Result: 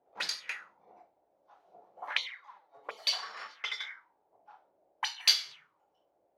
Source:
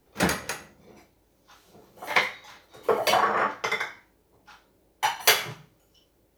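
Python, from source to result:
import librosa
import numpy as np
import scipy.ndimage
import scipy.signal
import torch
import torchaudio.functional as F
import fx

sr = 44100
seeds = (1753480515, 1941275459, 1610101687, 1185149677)

y = fx.env_flanger(x, sr, rest_ms=8.8, full_db=-19.5, at=(2.11, 2.99))
y = fx.auto_wah(y, sr, base_hz=670.0, top_hz=4600.0, q=4.4, full_db=-23.0, direction='up')
y = y * librosa.db_to_amplitude(4.0)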